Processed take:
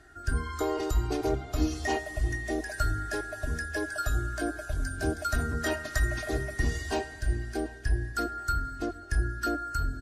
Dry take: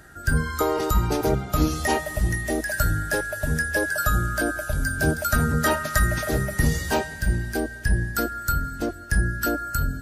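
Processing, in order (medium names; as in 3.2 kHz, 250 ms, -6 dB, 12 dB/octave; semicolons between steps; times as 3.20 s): low-pass 8 kHz 12 dB/octave; comb 2.8 ms, depth 83%; on a send: tape echo 733 ms, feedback 54%, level -20 dB, low-pass 2.6 kHz; on the sum: trim -9 dB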